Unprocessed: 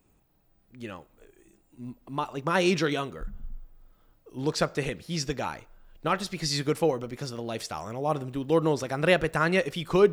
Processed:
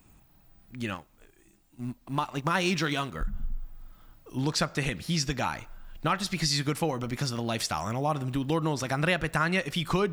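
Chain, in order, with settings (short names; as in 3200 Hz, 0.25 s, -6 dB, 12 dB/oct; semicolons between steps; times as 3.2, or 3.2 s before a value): 0.94–3.15 G.711 law mismatch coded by A; bell 450 Hz -9.5 dB 0.93 oct; compressor 2.5:1, threshold -36 dBFS, peak gain reduction 11.5 dB; gain +9 dB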